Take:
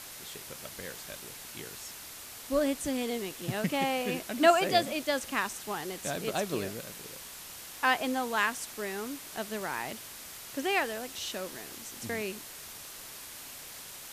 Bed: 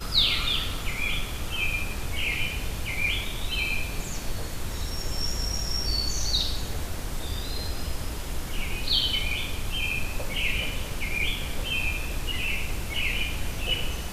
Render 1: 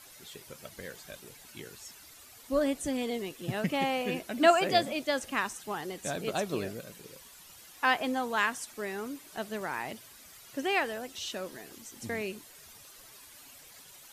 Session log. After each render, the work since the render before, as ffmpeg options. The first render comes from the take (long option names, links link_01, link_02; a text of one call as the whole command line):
ffmpeg -i in.wav -af "afftdn=noise_reduction=11:noise_floor=-46" out.wav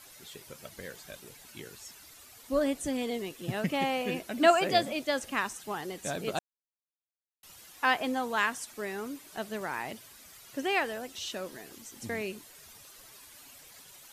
ffmpeg -i in.wav -filter_complex "[0:a]asplit=3[link_01][link_02][link_03];[link_01]atrim=end=6.39,asetpts=PTS-STARTPTS,afade=type=out:start_time=6.386:duration=0.004:curve=hsin[link_04];[link_02]atrim=start=6.39:end=7.43,asetpts=PTS-STARTPTS,volume=0[link_05];[link_03]atrim=start=7.43,asetpts=PTS-STARTPTS,afade=type=in:duration=0.004:curve=hsin[link_06];[link_04][link_05][link_06]concat=n=3:v=0:a=1" out.wav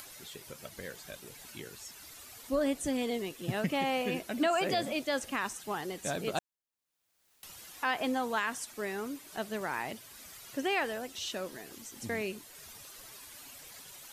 ffmpeg -i in.wav -af "acompressor=mode=upward:threshold=-44dB:ratio=2.5,alimiter=limit=-20.5dB:level=0:latency=1:release=68" out.wav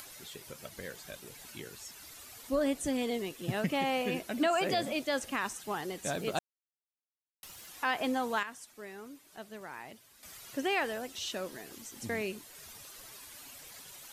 ffmpeg -i in.wav -filter_complex "[0:a]asettb=1/sr,asplit=3[link_01][link_02][link_03];[link_01]atrim=end=6.134[link_04];[link_02]atrim=start=6.13:end=7.67,asetpts=PTS-STARTPTS,afade=type=in:duration=0.004:curve=qsin,afade=type=out:start_time=1.536:duration=0.004:curve=qsin,aeval=exprs='val(0)*gte(abs(val(0)),0.00168)':channel_layout=same[link_05];[link_03]atrim=start=7.666[link_06];[link_04][link_05]acrossfade=duration=0.004:curve1=hsin:curve2=qsin[link_07];[link_07][link_06]acrossfade=duration=0.004:curve1=qsin:curve2=hsin,asplit=3[link_08][link_09][link_10];[link_08]atrim=end=8.432[link_11];[link_09]atrim=start=8.428:end=10.232,asetpts=PTS-STARTPTS,volume=-9.5dB[link_12];[link_10]atrim=start=10.228[link_13];[link_11][link_12]acrossfade=duration=0.004:curve1=hsin:curve2=hsin[link_14];[link_14][link_13]acrossfade=duration=0.004:curve1=hsin:curve2=hsin" out.wav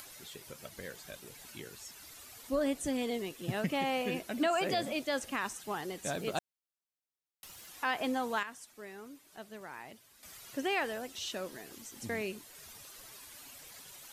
ffmpeg -i in.wav -af "volume=-1.5dB" out.wav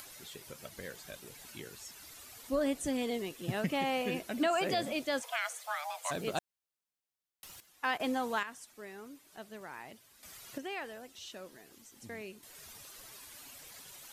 ffmpeg -i in.wav -filter_complex "[0:a]asplit=3[link_01][link_02][link_03];[link_01]afade=type=out:start_time=5.21:duration=0.02[link_04];[link_02]afreqshift=440,afade=type=in:start_time=5.21:duration=0.02,afade=type=out:start_time=6.1:duration=0.02[link_05];[link_03]afade=type=in:start_time=6.1:duration=0.02[link_06];[link_04][link_05][link_06]amix=inputs=3:normalize=0,asettb=1/sr,asplit=3[link_07][link_08][link_09];[link_07]atrim=end=7.604[link_10];[link_08]atrim=start=7.6:end=8,asetpts=PTS-STARTPTS,afade=type=in:duration=0.004:curve=qsin,afade=type=out:start_time=0.396:duration=0.004:curve=qsin,agate=range=-13dB:threshold=-38dB:ratio=16:release=100:detection=peak[link_11];[link_09]atrim=start=7.996[link_12];[link_10][link_11]acrossfade=duration=0.004:curve1=hsin:curve2=qsin[link_13];[link_13][link_12]acrossfade=duration=0.004:curve1=qsin:curve2=hsin,asplit=3[link_14][link_15][link_16];[link_14]atrim=end=10.582[link_17];[link_15]atrim=start=10.578:end=12.432,asetpts=PTS-STARTPTS,volume=-8dB[link_18];[link_16]atrim=start=12.428[link_19];[link_17][link_18]acrossfade=duration=0.004:curve1=hsin:curve2=hsin[link_20];[link_20][link_19]acrossfade=duration=0.004:curve1=hsin:curve2=hsin" out.wav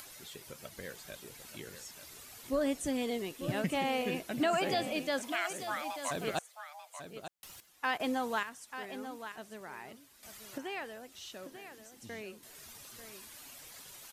ffmpeg -i in.wav -af "aecho=1:1:890:0.299" out.wav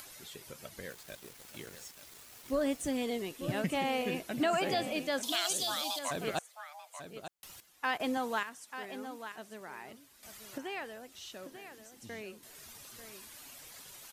ffmpeg -i in.wav -filter_complex "[0:a]asettb=1/sr,asplit=3[link_01][link_02][link_03];[link_01]atrim=end=0.904[link_04];[link_02]atrim=start=0.9:end=3,asetpts=PTS-STARTPTS,afade=type=in:duration=0.004:curve=qsin,afade=type=out:start_time=2.096:duration=0.004:curve=qsin,aeval=exprs='val(0)*gte(abs(val(0)),0.00376)':channel_layout=same[link_05];[link_03]atrim=start=2.996[link_06];[link_04][link_05]acrossfade=duration=0.004:curve1=hsin:curve2=qsin[link_07];[link_07][link_06]acrossfade=duration=0.004:curve1=qsin:curve2=hsin,asettb=1/sr,asplit=3[link_08][link_09][link_10];[link_08]atrim=end=5.234[link_11];[link_09]atrim=start=5.23:end=5.99,asetpts=PTS-STARTPTS,afade=type=in:duration=0.004:curve=qsin,afade=type=out:start_time=0.756:duration=0.004:curve=qsin,highshelf=frequency=2800:width_type=q:width=3:gain=9.5[link_12];[link_10]atrim=start=5.986[link_13];[link_11][link_12]acrossfade=duration=0.004:curve1=hsin:curve2=qsin[link_14];[link_14][link_13]acrossfade=duration=0.004:curve1=qsin:curve2=hsin,asettb=1/sr,asplit=3[link_15][link_16][link_17];[link_15]atrim=end=8.174[link_18];[link_16]atrim=start=8.17:end=9.9,asetpts=PTS-STARTPTS,afade=type=in:duration=0.004:curve=qsin,afade=type=out:start_time=1.726:duration=0.004:curve=qsin,highpass=130[link_19];[link_17]atrim=start=9.896[link_20];[link_18][link_19]acrossfade=duration=0.004:curve1=hsin:curve2=qsin[link_21];[link_21][link_20]acrossfade=duration=0.004:curve1=qsin:curve2=hsin" out.wav